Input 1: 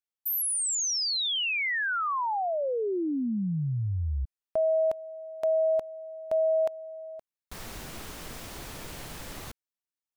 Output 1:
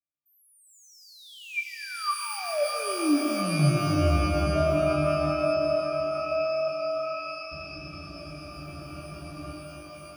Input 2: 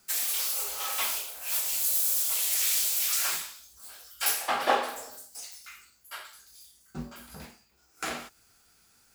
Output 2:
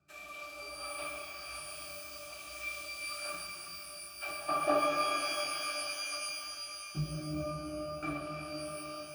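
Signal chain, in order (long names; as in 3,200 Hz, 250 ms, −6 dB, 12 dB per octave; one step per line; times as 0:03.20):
high-pass filter 67 Hz
resonances in every octave D, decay 0.14 s
reverb with rising layers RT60 3.9 s, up +12 semitones, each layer −2 dB, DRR 2 dB
level +9 dB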